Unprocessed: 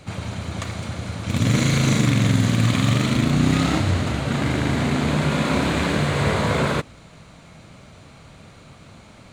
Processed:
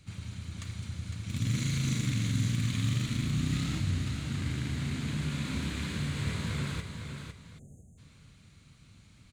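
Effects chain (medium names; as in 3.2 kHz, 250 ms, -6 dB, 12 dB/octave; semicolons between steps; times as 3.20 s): amplifier tone stack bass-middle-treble 6-0-2; feedback delay 506 ms, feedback 28%, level -7 dB; spectral selection erased 7.59–7.98 s, 800–6200 Hz; trim +4 dB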